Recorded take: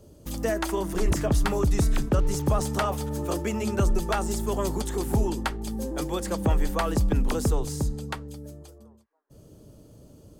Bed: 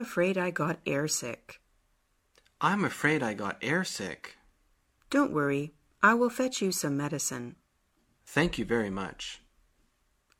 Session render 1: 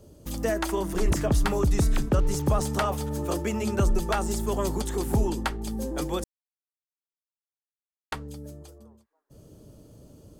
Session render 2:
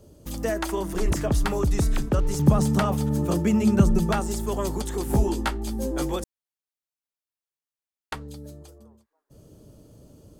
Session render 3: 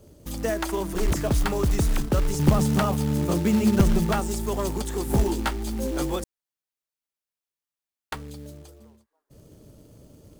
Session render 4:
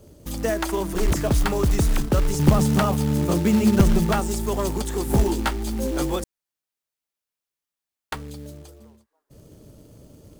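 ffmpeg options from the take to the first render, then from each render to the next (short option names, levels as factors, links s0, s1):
-filter_complex "[0:a]asplit=3[s0][s1][s2];[s0]atrim=end=6.24,asetpts=PTS-STARTPTS,afade=t=out:st=6.236:d=0.004:c=hsin[s3];[s1]atrim=start=6.24:end=8.12,asetpts=PTS-STARTPTS,volume=0[s4];[s2]atrim=start=8.12,asetpts=PTS-STARTPTS,afade=t=in:d=0.004:c=hsin[s5];[s3][s4][s5]concat=n=3:v=0:a=1"
-filter_complex "[0:a]asettb=1/sr,asplit=3[s0][s1][s2];[s0]atrim=end=2.394[s3];[s1]atrim=start=2.39:end=4.2,asetpts=PTS-STARTPTS,afade=t=in:d=0.004:c=qsin,afade=t=out:st=1.806:d=0.004:c=qsin,equalizer=f=180:w=1.4:g=13.5[s4];[s2]atrim=start=4.196[s5];[s3][s4]acrossfade=d=0.004:c1=hsin:c2=qsin[s6];[s6][s5]acrossfade=d=0.004:c1=qsin:c2=hsin,asettb=1/sr,asplit=3[s7][s8][s9];[s7]atrim=end=5.084[s10];[s8]atrim=start=5.08:end=6.16,asetpts=PTS-STARTPTS,afade=t=in:d=0.004:c=qsin,afade=t=out:st=1.076:d=0.004:c=qsin,asplit=2[s11][s12];[s12]adelay=15,volume=0.794[s13];[s11][s13]amix=inputs=2:normalize=0,atrim=end_sample=47628[s14];[s9]atrim=start=6.156[s15];[s10][s14]acrossfade=d=0.004:c1=hsin:c2=qsin[s16];[s16][s15]acrossfade=d=0.004:c1=qsin:c2=hsin,asettb=1/sr,asplit=3[s17][s18][s19];[s17]atrim=end=8.214[s20];[s18]atrim=start=8.21:end=8.63,asetpts=PTS-STARTPTS,afade=t=in:d=0.004:c=qsin,afade=t=out:st=0.416:d=0.004:c=qsin,equalizer=f=4000:t=o:w=0.31:g=7[s21];[s19]atrim=start=8.626[s22];[s20][s21]acrossfade=d=0.004:c1=hsin:c2=qsin[s23];[s23][s22]acrossfade=d=0.004:c1=qsin:c2=hsin"
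-af "acrusher=bits=4:mode=log:mix=0:aa=0.000001,aeval=exprs='clip(val(0),-1,0.178)':c=same"
-af "volume=1.33"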